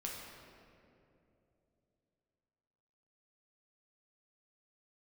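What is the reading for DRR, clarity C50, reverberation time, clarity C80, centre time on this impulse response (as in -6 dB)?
-3.0 dB, 0.5 dB, 2.9 s, 2.5 dB, 0.105 s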